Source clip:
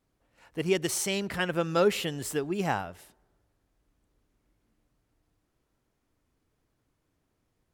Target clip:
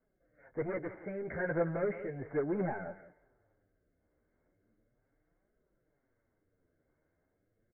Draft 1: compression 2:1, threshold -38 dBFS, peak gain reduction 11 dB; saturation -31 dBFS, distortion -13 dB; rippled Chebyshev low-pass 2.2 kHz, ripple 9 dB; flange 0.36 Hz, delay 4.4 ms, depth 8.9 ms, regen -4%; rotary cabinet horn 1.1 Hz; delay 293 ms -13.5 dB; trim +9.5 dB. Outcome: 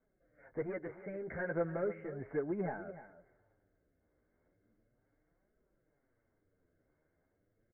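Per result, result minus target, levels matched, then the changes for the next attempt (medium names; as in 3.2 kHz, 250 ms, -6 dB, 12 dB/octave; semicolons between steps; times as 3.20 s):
echo 122 ms late; compression: peak gain reduction +11 dB
change: delay 171 ms -13.5 dB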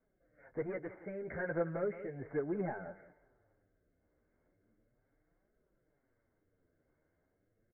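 compression: peak gain reduction +11 dB
remove: compression 2:1, threshold -38 dBFS, peak gain reduction 11 dB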